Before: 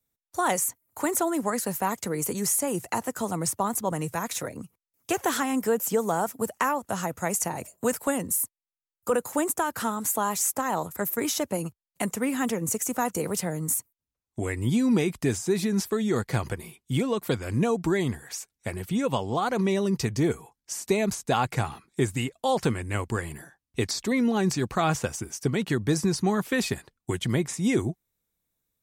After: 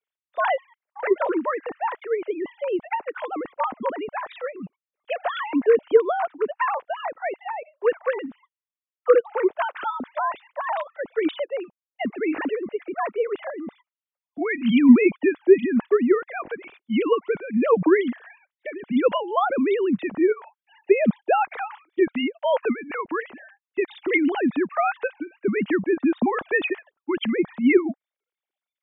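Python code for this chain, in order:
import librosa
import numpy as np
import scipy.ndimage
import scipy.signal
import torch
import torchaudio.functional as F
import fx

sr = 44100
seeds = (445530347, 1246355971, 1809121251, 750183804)

y = fx.sine_speech(x, sr)
y = fx.transient(y, sr, attack_db=1, sustain_db=-11, at=(11.64, 12.04), fade=0.02)
y = fx.high_shelf(y, sr, hz=2000.0, db=12.0, at=(14.45, 15.11))
y = y * librosa.db_to_amplitude(4.0)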